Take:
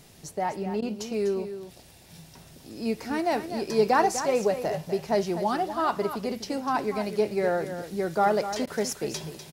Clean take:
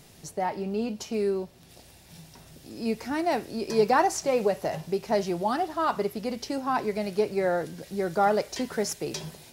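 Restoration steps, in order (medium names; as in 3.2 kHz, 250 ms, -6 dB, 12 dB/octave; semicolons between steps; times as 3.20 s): interpolate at 0.81/8.66 s, 11 ms; inverse comb 248 ms -10.5 dB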